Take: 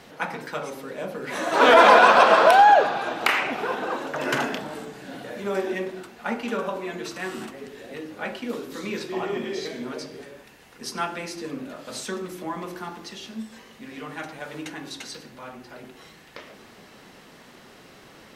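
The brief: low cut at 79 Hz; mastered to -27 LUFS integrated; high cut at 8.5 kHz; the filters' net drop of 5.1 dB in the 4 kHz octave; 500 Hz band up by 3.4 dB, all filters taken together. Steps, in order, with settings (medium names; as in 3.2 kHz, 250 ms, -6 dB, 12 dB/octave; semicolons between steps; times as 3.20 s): high-pass 79 Hz; low-pass 8.5 kHz; peaking EQ 500 Hz +4.5 dB; peaking EQ 4 kHz -7 dB; trim -6.5 dB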